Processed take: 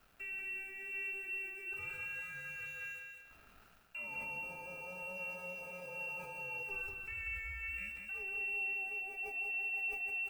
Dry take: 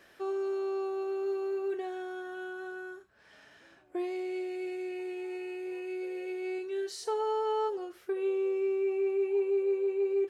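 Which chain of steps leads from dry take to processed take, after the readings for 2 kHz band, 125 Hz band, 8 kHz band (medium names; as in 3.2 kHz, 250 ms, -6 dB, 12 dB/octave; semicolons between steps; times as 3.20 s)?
+8.5 dB, no reading, -7.5 dB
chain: in parallel at -8 dB: saturation -28.5 dBFS, distortion -15 dB; on the sum: frequency inversion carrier 3.1 kHz; tilt shelf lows +7.5 dB, about 1.3 kHz; added noise violet -66 dBFS; crossover distortion -57 dBFS; peak limiter -32.5 dBFS, peak gain reduction 8.5 dB; bass shelf 77 Hz +8 dB; feedback delay 189 ms, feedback 34%, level -4.5 dB; decay stretcher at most 54 dB/s; trim -4.5 dB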